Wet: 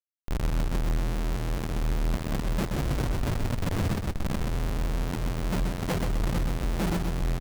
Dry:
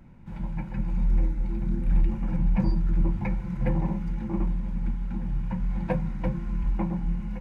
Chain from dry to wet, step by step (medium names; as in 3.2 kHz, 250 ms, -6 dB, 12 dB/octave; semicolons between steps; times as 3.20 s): 2.75–4.42 s: ring modulator 110 Hz -> 27 Hz; Schmitt trigger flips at -32 dBFS; reverb removal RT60 0.62 s; on a send: feedback delay 128 ms, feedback 38%, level -5 dB